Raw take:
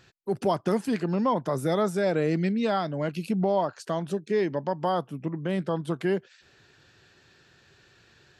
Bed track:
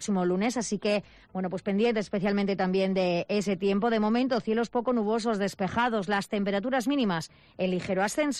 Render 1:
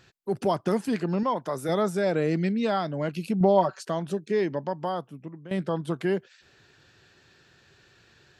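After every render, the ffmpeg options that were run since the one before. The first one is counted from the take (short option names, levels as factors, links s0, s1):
-filter_complex "[0:a]asettb=1/sr,asplit=3[s0][s1][s2];[s0]atrim=end=1.234[s3];[s1]atrim=start=1.23:end=1.69,asetpts=PTS-STARTPTS,afade=t=in:d=0.004:c=qsin,afade=t=out:st=0.456:d=0.004:c=qsin,lowshelf=f=300:g=-9.5[s4];[s2]atrim=start=1.686[s5];[s3][s4]acrossfade=d=0.004:c1=hsin:c2=qsin[s6];[s6][s5]acrossfade=d=0.004:c1=qsin:c2=hsin,asettb=1/sr,asplit=3[s7][s8][s9];[s7]atrim=end=3.404[s10];[s8]atrim=start=3.4:end=3.85,asetpts=PTS-STARTPTS,afade=t=in:d=0.004:c=qsin,afade=t=out:st=0.446:d=0.004:c=qsin,aecho=1:1:5.3:0.87,atrim=end_sample=19845[s11];[s9]atrim=start=3.846[s12];[s10][s11]acrossfade=d=0.004:c1=hsin:c2=qsin[s13];[s13][s12]acrossfade=d=0.004:c1=qsin:c2=hsin,asplit=2[s14][s15];[s14]atrim=end=5.51,asetpts=PTS-STARTPTS,afade=t=out:st=4.46:d=1.05:silence=0.188365[s16];[s15]atrim=start=5.51,asetpts=PTS-STARTPTS,afade=t=in:d=0.004:c=hsin:silence=0.188365[s17];[s16][s17]concat=n=2:v=0:a=1"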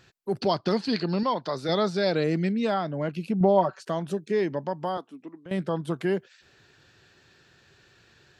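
-filter_complex "[0:a]asettb=1/sr,asplit=3[s0][s1][s2];[s0]atrim=end=0.414[s3];[s1]atrim=start=0.41:end=2.24,asetpts=PTS-STARTPTS,afade=t=in:d=0.004:c=qsin,afade=t=out:st=1.826:d=0.004:c=qsin,lowpass=f=4400:t=q:w=7.7[s4];[s2]atrim=start=2.236[s5];[s3][s4]acrossfade=d=0.004:c1=hsin:c2=qsin[s6];[s6][s5]acrossfade=d=0.004:c1=qsin:c2=hsin,asettb=1/sr,asplit=3[s7][s8][s9];[s7]atrim=end=2.744[s10];[s8]atrim=start=2.74:end=3.86,asetpts=PTS-STARTPTS,afade=t=in:d=0.004:c=qsin,afade=t=out:st=1.116:d=0.004:c=qsin,lowpass=f=3200:p=1[s11];[s9]atrim=start=3.856[s12];[s10][s11]acrossfade=d=0.004:c1=hsin:c2=qsin[s13];[s13][s12]acrossfade=d=0.004:c1=qsin:c2=hsin,asettb=1/sr,asplit=3[s14][s15][s16];[s14]atrim=end=4.974[s17];[s15]atrim=start=4.97:end=5.46,asetpts=PTS-STARTPTS,afade=t=in:d=0.004:c=qsin,afade=t=out:st=0.486:d=0.004:c=qsin,highpass=f=250:w=0.5412,highpass=f=250:w=1.3066,equalizer=f=270:t=q:w=4:g=4,equalizer=f=540:t=q:w=4:g=-7,equalizer=f=3900:t=q:w=4:g=6,lowpass=f=9500:w=0.5412,lowpass=f=9500:w=1.3066[s18];[s16]atrim=start=5.456[s19];[s17][s18]acrossfade=d=0.004:c1=hsin:c2=qsin[s20];[s20][s19]acrossfade=d=0.004:c1=qsin:c2=hsin"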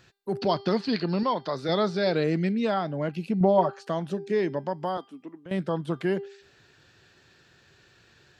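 -filter_complex "[0:a]bandreject=f=397.7:t=h:w=4,bandreject=f=795.4:t=h:w=4,bandreject=f=1193.1:t=h:w=4,bandreject=f=1590.8:t=h:w=4,bandreject=f=1988.5:t=h:w=4,bandreject=f=2386.2:t=h:w=4,bandreject=f=2783.9:t=h:w=4,bandreject=f=3181.6:t=h:w=4,bandreject=f=3579.3:t=h:w=4,bandreject=f=3977:t=h:w=4,bandreject=f=4374.7:t=h:w=4,bandreject=f=4772.4:t=h:w=4,bandreject=f=5170.1:t=h:w=4,bandreject=f=5567.8:t=h:w=4,acrossover=split=5800[s0][s1];[s1]acompressor=threshold=0.00112:ratio=4:attack=1:release=60[s2];[s0][s2]amix=inputs=2:normalize=0"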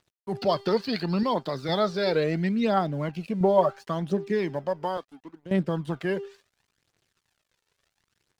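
-af "aeval=exprs='sgn(val(0))*max(abs(val(0))-0.00211,0)':c=same,aphaser=in_gain=1:out_gain=1:delay=2.3:decay=0.45:speed=0.72:type=triangular"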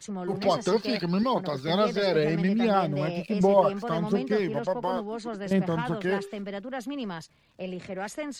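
-filter_complex "[1:a]volume=0.422[s0];[0:a][s0]amix=inputs=2:normalize=0"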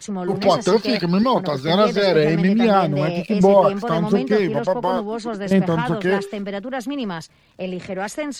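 -af "volume=2.51,alimiter=limit=0.708:level=0:latency=1"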